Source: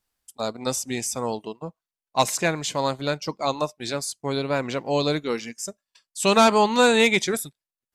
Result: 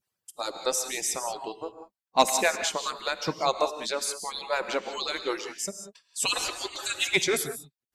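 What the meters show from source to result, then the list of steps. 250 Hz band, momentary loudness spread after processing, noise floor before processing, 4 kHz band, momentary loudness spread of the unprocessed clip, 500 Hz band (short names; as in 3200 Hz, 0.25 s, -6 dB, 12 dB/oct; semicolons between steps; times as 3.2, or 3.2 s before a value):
-12.0 dB, 12 LU, under -85 dBFS, -2.0 dB, 16 LU, -7.0 dB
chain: median-filter separation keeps percussive; non-linear reverb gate 0.21 s rising, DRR 8 dB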